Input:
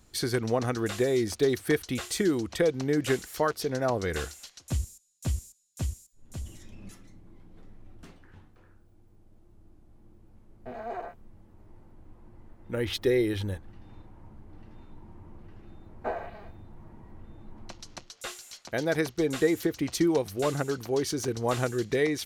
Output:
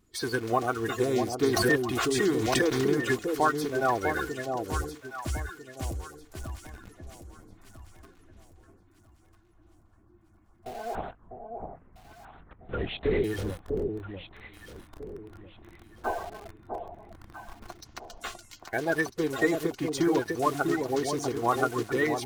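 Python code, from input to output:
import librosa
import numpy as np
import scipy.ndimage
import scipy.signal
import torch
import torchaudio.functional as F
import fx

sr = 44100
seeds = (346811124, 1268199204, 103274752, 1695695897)

p1 = fx.spec_quant(x, sr, step_db=30)
p2 = fx.peak_eq(p1, sr, hz=1100.0, db=9.0, octaves=1.9)
p3 = p2 + 0.36 * np.pad(p2, (int(2.8 * sr / 1000.0), 0))[:len(p2)]
p4 = fx.quant_dither(p3, sr, seeds[0], bits=6, dither='none')
p5 = p3 + (p4 * 10.0 ** (-3.5 / 20.0))
p6 = fx.vibrato(p5, sr, rate_hz=0.53, depth_cents=6.5)
p7 = fx.lpc_vocoder(p6, sr, seeds[1], excitation='whisper', order=8, at=(10.95, 13.24))
p8 = fx.echo_alternate(p7, sr, ms=649, hz=870.0, feedback_pct=52, wet_db=-4.0)
p9 = fx.pre_swell(p8, sr, db_per_s=28.0, at=(1.47, 2.98))
y = p9 * 10.0 ** (-8.5 / 20.0)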